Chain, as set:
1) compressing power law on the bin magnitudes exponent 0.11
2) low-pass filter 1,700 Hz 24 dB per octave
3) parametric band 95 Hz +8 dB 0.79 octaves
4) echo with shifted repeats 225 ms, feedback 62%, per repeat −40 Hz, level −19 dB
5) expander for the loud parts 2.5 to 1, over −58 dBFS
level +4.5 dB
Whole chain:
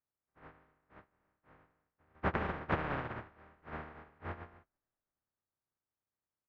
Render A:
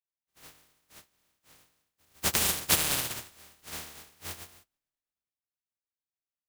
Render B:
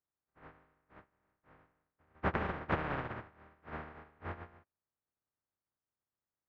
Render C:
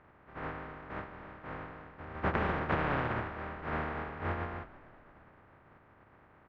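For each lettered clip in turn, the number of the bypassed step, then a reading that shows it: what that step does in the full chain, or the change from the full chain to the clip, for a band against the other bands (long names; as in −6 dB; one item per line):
2, 4 kHz band +25.0 dB
4, change in momentary loudness spread +2 LU
5, change in crest factor −5.0 dB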